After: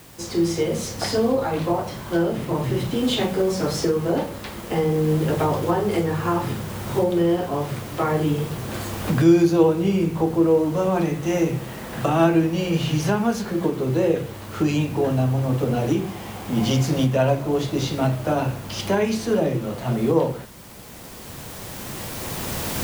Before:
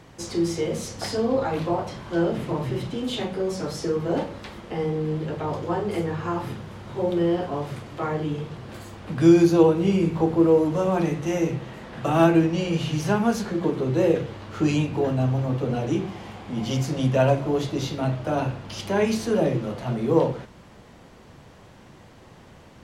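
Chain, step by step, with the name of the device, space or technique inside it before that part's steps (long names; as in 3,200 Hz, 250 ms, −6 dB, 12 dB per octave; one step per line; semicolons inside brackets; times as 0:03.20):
cheap recorder with automatic gain (white noise bed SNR 26 dB; camcorder AGC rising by 7.8 dB per second)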